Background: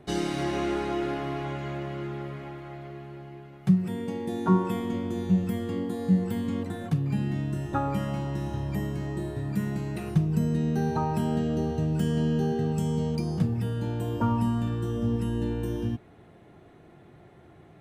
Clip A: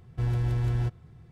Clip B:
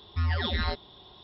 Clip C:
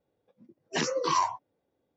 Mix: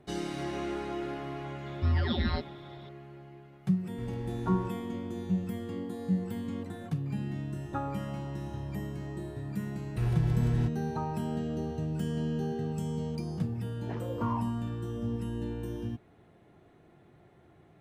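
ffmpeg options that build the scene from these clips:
ffmpeg -i bed.wav -i cue0.wav -i cue1.wav -i cue2.wav -filter_complex "[1:a]asplit=2[link_01][link_02];[0:a]volume=-6.5dB[link_03];[2:a]equalizer=frequency=180:width_type=o:width=2.3:gain=12.5[link_04];[3:a]lowpass=1100[link_05];[link_04]atrim=end=1.23,asetpts=PTS-STARTPTS,volume=-6dB,afade=type=in:duration=0.004:curve=hsin,afade=type=out:start_time=1.226:duration=0.004:curve=hsin,adelay=1660[link_06];[link_01]atrim=end=1.31,asetpts=PTS-STARTPTS,volume=-12dB,afade=type=in:duration=0.004:curve=hsin,afade=type=out:start_time=1.306:duration=0.004:curve=hsin,adelay=3800[link_07];[link_02]atrim=end=1.31,asetpts=PTS-STARTPTS,volume=-2dB,afade=type=in:duration=0.004:curve=hsin,afade=type=out:start_time=1.306:duration=0.004:curve=hsin,adelay=9790[link_08];[link_05]atrim=end=1.96,asetpts=PTS-STARTPTS,volume=-10dB,afade=type=in:duration=0.004:curve=hsin,afade=type=out:start_time=1.956:duration=0.004:curve=hsin,adelay=13140[link_09];[link_03][link_06][link_07][link_08][link_09]amix=inputs=5:normalize=0" out.wav

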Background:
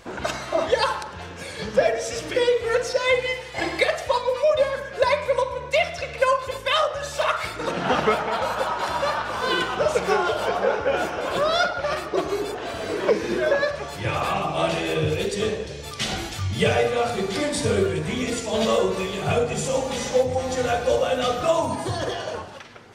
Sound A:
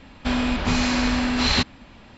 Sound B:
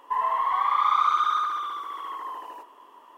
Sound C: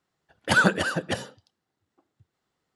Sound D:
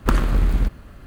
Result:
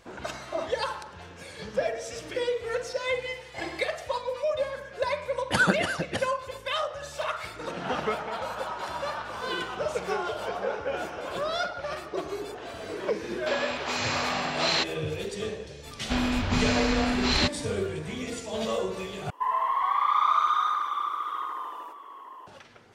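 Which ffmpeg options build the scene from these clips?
ffmpeg -i bed.wav -i cue0.wav -i cue1.wav -i cue2.wav -filter_complex "[1:a]asplit=2[link_01][link_02];[0:a]volume=-8.5dB[link_03];[link_01]highpass=frequency=360:width=0.5412,highpass=frequency=360:width=1.3066[link_04];[2:a]asplit=2[link_05][link_06];[link_06]adelay=758,volume=-8dB,highshelf=frequency=4000:gain=-17.1[link_07];[link_05][link_07]amix=inputs=2:normalize=0[link_08];[link_03]asplit=2[link_09][link_10];[link_09]atrim=end=19.304[link_11];[link_08]atrim=end=3.17,asetpts=PTS-STARTPTS,volume=-1.5dB[link_12];[link_10]atrim=start=22.466[link_13];[3:a]atrim=end=2.75,asetpts=PTS-STARTPTS,volume=-3dB,afade=type=in:duration=0.004:curve=hsin,afade=type=out:start_time=2.746:duration=0.004:curve=hsin,adelay=5030[link_14];[link_04]atrim=end=2.17,asetpts=PTS-STARTPTS,volume=-4dB,afade=type=in:duration=0.004:curve=hsin,afade=type=out:start_time=2.166:duration=0.004:curve=hsin,adelay=13210[link_15];[link_02]atrim=end=2.17,asetpts=PTS-STARTPTS,volume=-4dB,afade=type=in:duration=0.004:curve=hsin,afade=type=out:start_time=2.166:duration=0.004:curve=hsin,adelay=15850[link_16];[link_11][link_12]acrossfade=duration=0.004:curve1=hsin:curve2=hsin[link_17];[link_17][link_13]acrossfade=duration=0.004:curve1=hsin:curve2=hsin[link_18];[link_18][link_14][link_15][link_16]amix=inputs=4:normalize=0" out.wav

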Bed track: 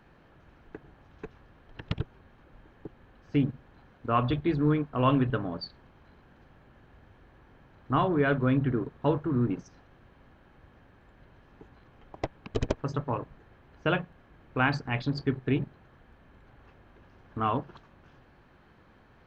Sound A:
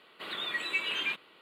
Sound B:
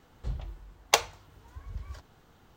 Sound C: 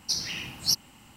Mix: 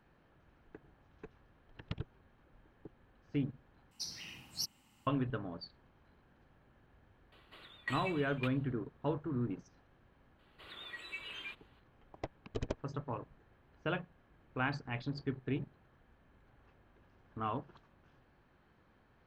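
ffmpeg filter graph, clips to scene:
ffmpeg -i bed.wav -i cue0.wav -i cue1.wav -i cue2.wav -filter_complex "[1:a]asplit=2[link_01][link_02];[0:a]volume=-9.5dB[link_03];[link_01]aeval=exprs='val(0)*pow(10,-26*if(lt(mod(1.8*n/s,1),2*abs(1.8)/1000),1-mod(1.8*n/s,1)/(2*abs(1.8)/1000),(mod(1.8*n/s,1)-2*abs(1.8)/1000)/(1-2*abs(1.8)/1000))/20)':channel_layout=same[link_04];[link_03]asplit=2[link_05][link_06];[link_05]atrim=end=3.914[link_07];[3:a]atrim=end=1.16,asetpts=PTS-STARTPTS,volume=-14dB[link_08];[link_06]atrim=start=5.066[link_09];[link_04]atrim=end=1.41,asetpts=PTS-STARTPTS,volume=-3dB,afade=type=in:duration=0.004:curve=hsin,afade=type=out:start_time=1.406:duration=0.004:curve=hsin,adelay=7320[link_10];[link_02]atrim=end=1.41,asetpts=PTS-STARTPTS,volume=-13.5dB,afade=type=in:duration=0.004:curve=hsin,afade=type=out:start_time=1.406:duration=0.004:curve=hsin,adelay=10390[link_11];[link_07][link_08]acrossfade=duration=0.004:curve1=hsin:curve2=hsin[link_12];[link_12][link_09]acrossfade=duration=0.004:curve1=hsin:curve2=hsin[link_13];[link_13][link_10][link_11]amix=inputs=3:normalize=0" out.wav

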